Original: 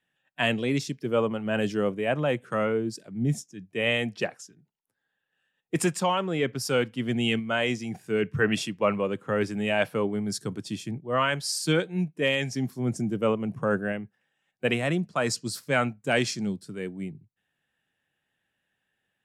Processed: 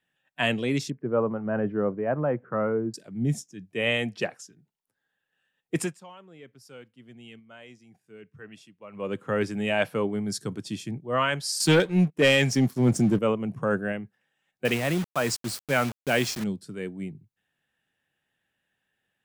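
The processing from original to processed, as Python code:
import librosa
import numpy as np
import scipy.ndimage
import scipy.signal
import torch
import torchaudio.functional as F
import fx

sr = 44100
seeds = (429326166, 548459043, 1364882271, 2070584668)

y = fx.lowpass(x, sr, hz=1500.0, slope=24, at=(0.9, 2.94))
y = fx.leveller(y, sr, passes=2, at=(11.6, 13.19))
y = fx.quant_dither(y, sr, seeds[0], bits=6, dither='none', at=(14.65, 16.44))
y = fx.edit(y, sr, fx.fade_down_up(start_s=5.75, length_s=3.39, db=-21.5, fade_s=0.22), tone=tone)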